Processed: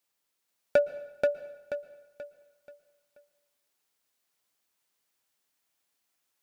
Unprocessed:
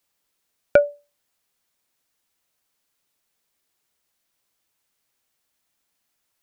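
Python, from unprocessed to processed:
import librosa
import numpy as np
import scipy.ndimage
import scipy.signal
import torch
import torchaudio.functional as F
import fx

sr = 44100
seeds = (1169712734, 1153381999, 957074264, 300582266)

p1 = fx.low_shelf(x, sr, hz=120.0, db=-10.0)
p2 = 10.0 ** (-12.5 / 20.0) * (np.abs((p1 / 10.0 ** (-12.5 / 20.0) + 3.0) % 4.0 - 2.0) - 1.0)
p3 = p1 + F.gain(torch.from_numpy(p2), -7.5).numpy()
p4 = fx.echo_feedback(p3, sr, ms=482, feedback_pct=37, wet_db=-3)
p5 = fx.rev_plate(p4, sr, seeds[0], rt60_s=1.0, hf_ratio=0.9, predelay_ms=105, drr_db=16.0)
y = F.gain(torch.from_numpy(p5), -8.5).numpy()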